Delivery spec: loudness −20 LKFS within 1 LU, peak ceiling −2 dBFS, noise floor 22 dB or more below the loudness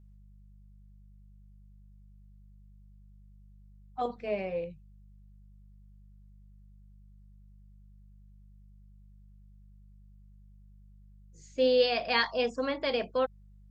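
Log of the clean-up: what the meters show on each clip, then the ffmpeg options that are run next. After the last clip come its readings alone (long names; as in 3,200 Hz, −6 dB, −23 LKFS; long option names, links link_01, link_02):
mains hum 50 Hz; hum harmonics up to 200 Hz; level of the hum −52 dBFS; integrated loudness −30.0 LKFS; sample peak −14.0 dBFS; target loudness −20.0 LKFS
→ -af "bandreject=frequency=50:width_type=h:width=4,bandreject=frequency=100:width_type=h:width=4,bandreject=frequency=150:width_type=h:width=4,bandreject=frequency=200:width_type=h:width=4"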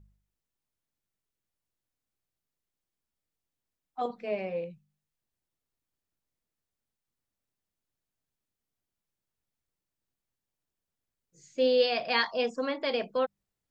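mains hum none found; integrated loudness −29.5 LKFS; sample peak −14.0 dBFS; target loudness −20.0 LKFS
→ -af "volume=9.5dB"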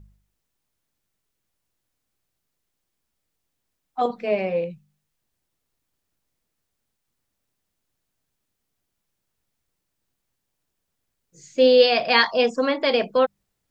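integrated loudness −20.0 LKFS; sample peak −4.5 dBFS; background noise floor −79 dBFS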